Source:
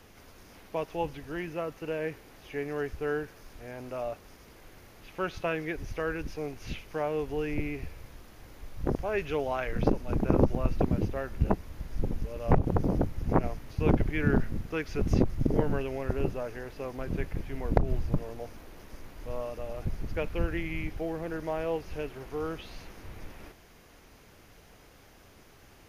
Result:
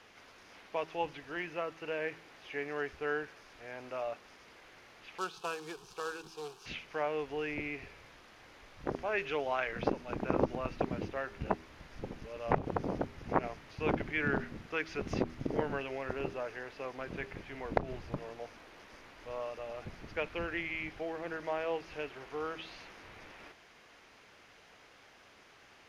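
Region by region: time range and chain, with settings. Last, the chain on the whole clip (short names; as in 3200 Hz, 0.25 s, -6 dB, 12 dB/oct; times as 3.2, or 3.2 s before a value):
5.18–6.66 low shelf 150 Hz -9.5 dB + companded quantiser 4-bit + fixed phaser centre 400 Hz, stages 8
whole clip: Bessel low-pass 2300 Hz, order 2; tilt +4 dB/oct; de-hum 80.66 Hz, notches 5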